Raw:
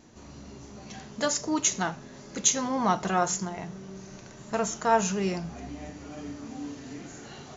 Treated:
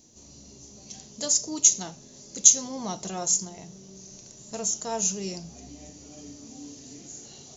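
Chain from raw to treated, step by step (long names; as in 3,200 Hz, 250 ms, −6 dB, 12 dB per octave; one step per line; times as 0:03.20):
drawn EQ curve 550 Hz 0 dB, 1,500 Hz −11 dB, 6,000 Hz +14 dB
level −6 dB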